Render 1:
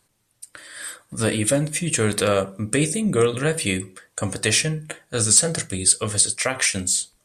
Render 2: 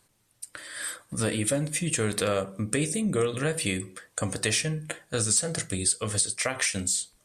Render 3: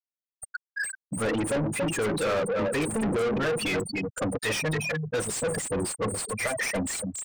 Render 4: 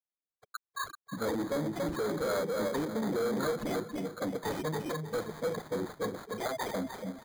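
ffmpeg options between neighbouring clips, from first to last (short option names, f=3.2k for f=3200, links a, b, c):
-af "acompressor=threshold=-28dB:ratio=2"
-filter_complex "[0:a]aecho=1:1:282|564|846|1128:0.447|0.152|0.0516|0.0176,afftfilt=real='re*gte(hypot(re,im),0.0708)':imag='im*gte(hypot(re,im),0.0708)':win_size=1024:overlap=0.75,asplit=2[a][b];[b]highpass=f=720:p=1,volume=34dB,asoftclip=type=tanh:threshold=-11.5dB[c];[a][c]amix=inputs=2:normalize=0,lowpass=f=3.1k:p=1,volume=-6dB,volume=-7.5dB"
-filter_complex "[0:a]highpass=170,lowpass=3.1k,aecho=1:1:319|638|957|1276:0.251|0.111|0.0486|0.0214,acrossover=split=670[a][b];[b]acrusher=samples=16:mix=1:aa=0.000001[c];[a][c]amix=inputs=2:normalize=0,volume=-4.5dB"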